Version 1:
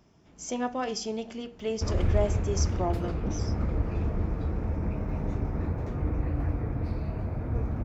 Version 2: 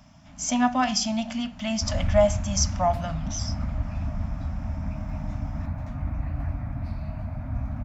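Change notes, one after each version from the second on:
speech +10.0 dB
master: add Chebyshev band-stop filter 270–600 Hz, order 3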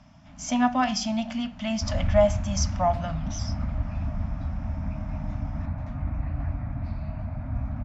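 master: add high-frequency loss of the air 88 metres

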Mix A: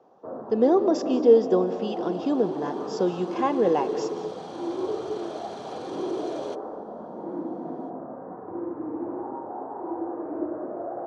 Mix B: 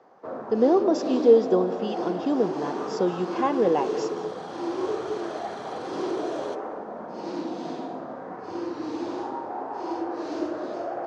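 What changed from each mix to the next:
first sound: remove Gaussian smoothing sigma 7 samples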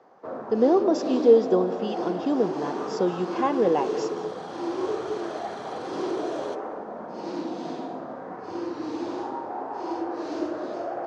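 nothing changed

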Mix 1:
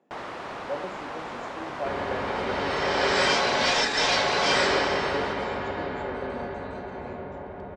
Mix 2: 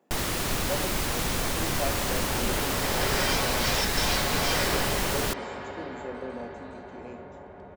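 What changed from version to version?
first sound: remove resonant band-pass 870 Hz, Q 0.96
second sound −7.0 dB
master: remove high-frequency loss of the air 73 metres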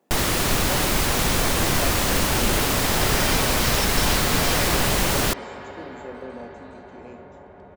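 first sound +7.0 dB

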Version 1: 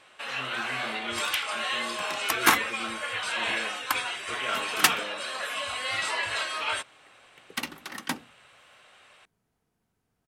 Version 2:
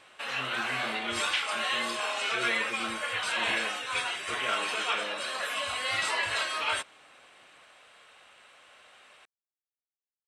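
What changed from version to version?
second sound: muted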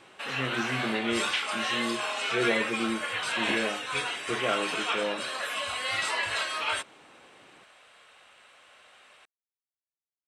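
speech +11.0 dB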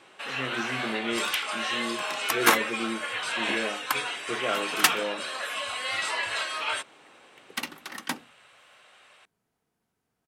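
second sound: unmuted
master: add low-shelf EQ 110 Hz −11.5 dB

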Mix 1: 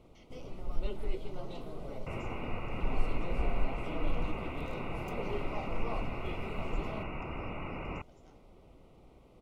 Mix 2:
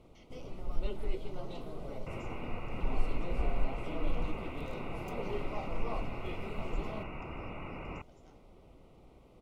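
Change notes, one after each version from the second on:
second sound −3.0 dB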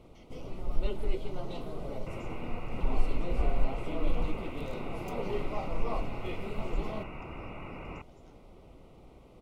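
first sound +4.0 dB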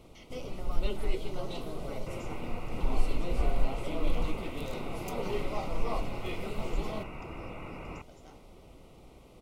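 speech +8.5 dB
first sound: add high-shelf EQ 3,200 Hz +9.5 dB

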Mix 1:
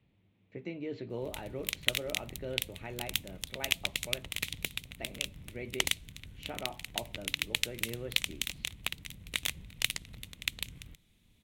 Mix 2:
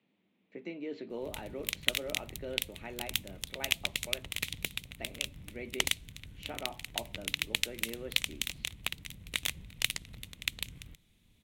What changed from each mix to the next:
speech: add Chebyshev high-pass filter 210 Hz, order 3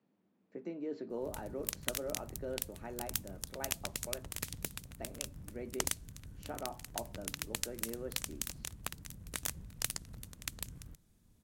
master: add flat-topped bell 2,800 Hz −13 dB 1.2 octaves

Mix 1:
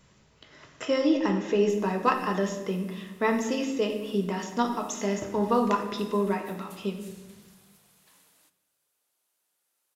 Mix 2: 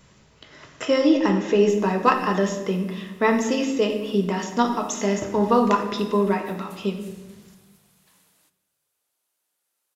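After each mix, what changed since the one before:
speech +5.5 dB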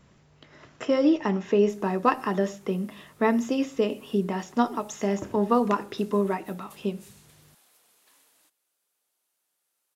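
speech: add high-shelf EQ 2,300 Hz −8 dB
reverb: off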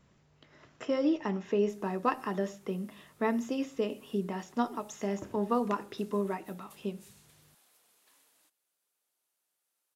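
speech −7.0 dB
background −4.5 dB

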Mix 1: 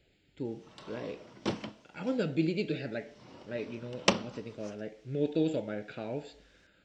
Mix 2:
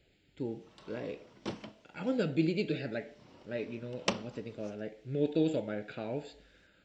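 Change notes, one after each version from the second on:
background −6.0 dB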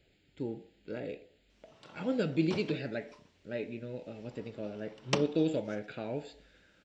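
background: entry +1.05 s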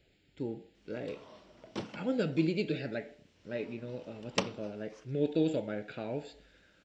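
speech: remove notch filter 5,500 Hz, Q 15
background: entry −0.75 s

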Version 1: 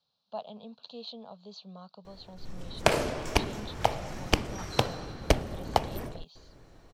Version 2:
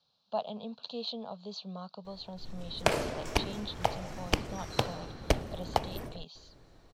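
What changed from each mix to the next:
speech +5.0 dB
background −3.5 dB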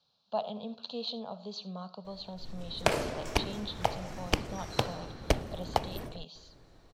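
reverb: on, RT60 0.50 s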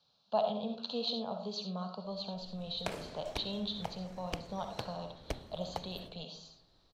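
speech: send +10.5 dB
background −12.0 dB

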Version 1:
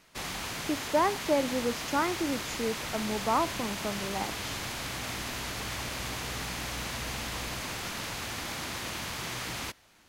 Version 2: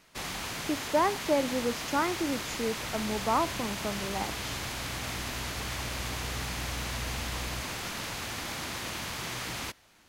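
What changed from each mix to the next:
second sound: add parametric band 81 Hz +14 dB 0.61 octaves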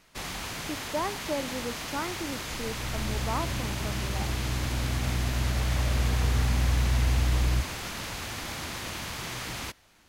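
speech −5.5 dB
second sound +10.5 dB
master: add low-shelf EQ 75 Hz +7 dB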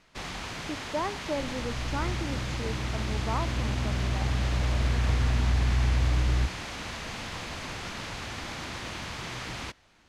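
second sound: entry −1.15 s
master: add high-frequency loss of the air 66 metres

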